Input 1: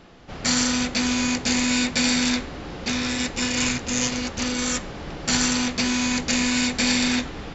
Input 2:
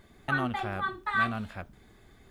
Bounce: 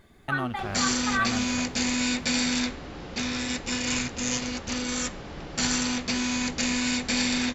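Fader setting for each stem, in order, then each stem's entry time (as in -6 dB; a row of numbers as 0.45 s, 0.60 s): -4.5 dB, +0.5 dB; 0.30 s, 0.00 s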